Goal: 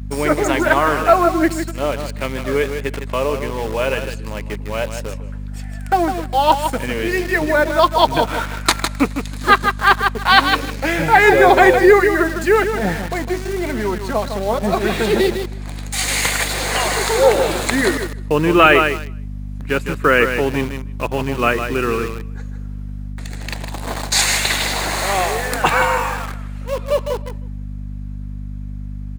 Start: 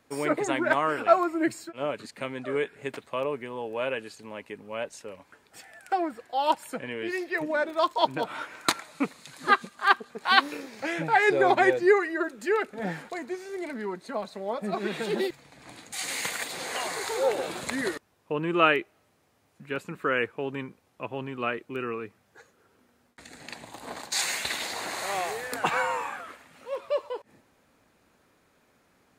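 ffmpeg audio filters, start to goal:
-filter_complex "[0:a]aecho=1:1:156|312|468:0.376|0.0677|0.0122,dynaudnorm=f=500:g=21:m=4.5dB,apsyclip=11.5dB,asplit=2[a][b];[b]acrusher=bits=3:mix=0:aa=0.000001,volume=-4dB[c];[a][c]amix=inputs=2:normalize=0,aeval=exprs='val(0)+0.1*(sin(2*PI*50*n/s)+sin(2*PI*2*50*n/s)/2+sin(2*PI*3*50*n/s)/3+sin(2*PI*4*50*n/s)/4+sin(2*PI*5*50*n/s)/5)':c=same,volume=-6.5dB"

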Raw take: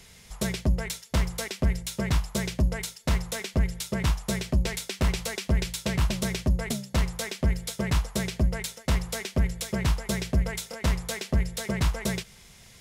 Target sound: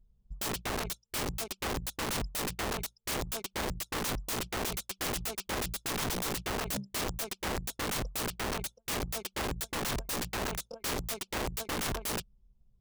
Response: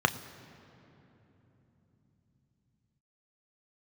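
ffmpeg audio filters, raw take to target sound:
-af "anlmdn=10,asuperstop=centerf=1900:order=4:qfactor=1.4,aeval=exprs='(mod(26.6*val(0)+1,2)-1)/26.6':c=same"

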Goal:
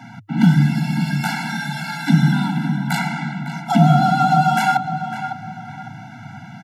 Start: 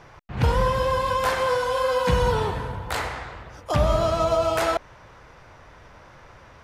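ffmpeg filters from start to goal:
-filter_complex "[0:a]lowshelf=f=100:g=5.5,asplit=2[a][b];[b]acompressor=threshold=-31dB:ratio=6,volume=0dB[c];[a][c]amix=inputs=2:normalize=0,asplit=2[d][e];[e]adelay=555,lowpass=f=2.9k:p=1,volume=-9.5dB,asplit=2[f][g];[g]adelay=555,lowpass=f=2.9k:p=1,volume=0.35,asplit=2[h][i];[i]adelay=555,lowpass=f=2.9k:p=1,volume=0.35,asplit=2[j][k];[k]adelay=555,lowpass=f=2.9k:p=1,volume=0.35[l];[d][f][h][j][l]amix=inputs=5:normalize=0,afreqshift=100,afftfilt=real='re*eq(mod(floor(b*sr/1024/330),2),0)':imag='im*eq(mod(floor(b*sr/1024/330),2),0)':win_size=1024:overlap=0.75,volume=4dB"

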